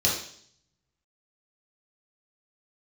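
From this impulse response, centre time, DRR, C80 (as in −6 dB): 37 ms, −5.0 dB, 8.5 dB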